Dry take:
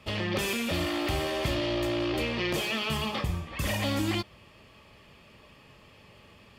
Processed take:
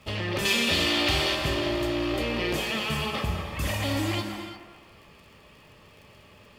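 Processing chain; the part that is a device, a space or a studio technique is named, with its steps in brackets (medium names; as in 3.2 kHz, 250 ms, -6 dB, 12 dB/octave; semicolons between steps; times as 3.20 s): 0.45–1.35 s: peaking EQ 3.9 kHz +11 dB 1.9 oct; feedback echo behind a band-pass 213 ms, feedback 37%, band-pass 890 Hz, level -6 dB; vinyl LP (crackle 75 per s -47 dBFS; pink noise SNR 42 dB); gated-style reverb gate 380 ms flat, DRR 5 dB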